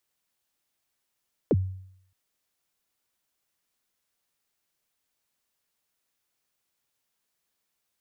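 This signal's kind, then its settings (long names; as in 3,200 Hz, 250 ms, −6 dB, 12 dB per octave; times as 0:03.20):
synth kick length 0.62 s, from 560 Hz, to 94 Hz, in 40 ms, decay 0.69 s, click off, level −16 dB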